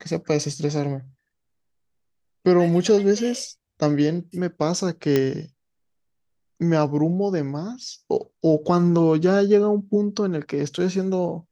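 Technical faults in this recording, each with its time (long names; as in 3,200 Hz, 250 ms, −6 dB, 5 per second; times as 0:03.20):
0:05.16: click −7 dBFS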